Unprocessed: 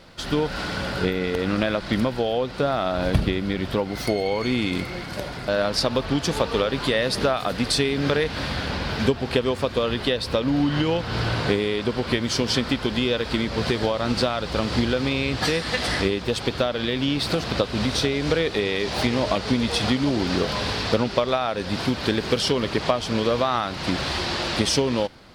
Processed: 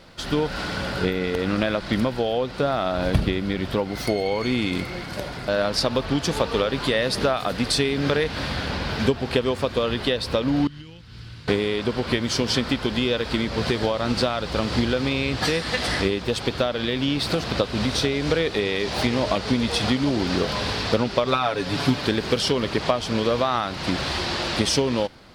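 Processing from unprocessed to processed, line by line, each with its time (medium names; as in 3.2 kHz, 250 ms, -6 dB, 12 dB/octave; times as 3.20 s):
10.67–11.48 s: amplifier tone stack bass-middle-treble 6-0-2
21.25–22.01 s: comb 7 ms, depth 86%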